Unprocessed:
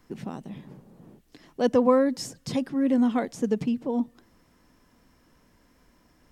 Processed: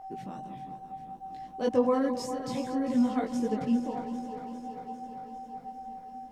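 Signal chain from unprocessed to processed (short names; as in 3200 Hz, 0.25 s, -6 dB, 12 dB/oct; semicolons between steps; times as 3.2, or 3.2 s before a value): regenerating reverse delay 0.2 s, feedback 82%, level -10.5 dB; whine 770 Hz -35 dBFS; chorus voices 6, 0.62 Hz, delay 19 ms, depth 3.3 ms; gain -3 dB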